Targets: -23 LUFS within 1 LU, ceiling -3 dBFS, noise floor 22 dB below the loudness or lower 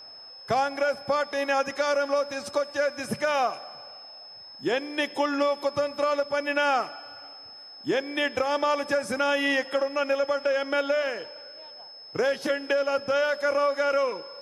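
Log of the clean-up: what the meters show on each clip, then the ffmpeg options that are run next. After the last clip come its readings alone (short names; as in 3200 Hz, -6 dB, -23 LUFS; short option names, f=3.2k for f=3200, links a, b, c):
steady tone 5200 Hz; tone level -43 dBFS; loudness -26.5 LUFS; peak -11.5 dBFS; loudness target -23.0 LUFS
-> -af "bandreject=f=5.2k:w=30"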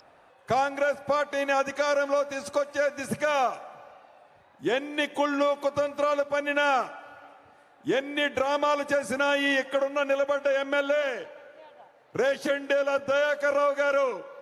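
steady tone none; loudness -26.5 LUFS; peak -11.5 dBFS; loudness target -23.0 LUFS
-> -af "volume=3.5dB"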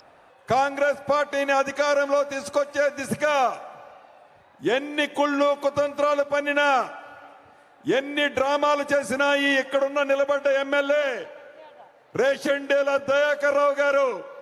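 loudness -23.0 LUFS; peak -8.0 dBFS; noise floor -54 dBFS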